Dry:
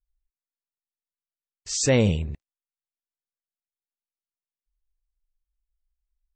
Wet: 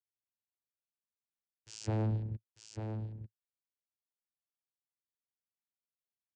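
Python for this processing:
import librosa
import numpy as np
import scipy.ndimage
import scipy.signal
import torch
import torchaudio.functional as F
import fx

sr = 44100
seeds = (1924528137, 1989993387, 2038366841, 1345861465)

y = fx.high_shelf(x, sr, hz=5000.0, db=-11.0, at=(1.85, 2.29))
y = np.clip(y, -10.0 ** (-26.5 / 20.0), 10.0 ** (-26.5 / 20.0))
y = fx.vocoder(y, sr, bands=8, carrier='saw', carrier_hz=109.0)
y = y + 10.0 ** (-7.0 / 20.0) * np.pad(y, (int(895 * sr / 1000.0), 0))[:len(y)]
y = y * librosa.db_to_amplitude(-3.0)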